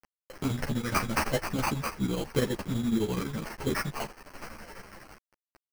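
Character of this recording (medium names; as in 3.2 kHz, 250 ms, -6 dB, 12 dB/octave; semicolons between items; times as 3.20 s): a quantiser's noise floor 8-bit, dither none; chopped level 12 Hz, depth 60%, duty 70%; aliases and images of a low sample rate 3.6 kHz, jitter 0%; a shimmering, thickened sound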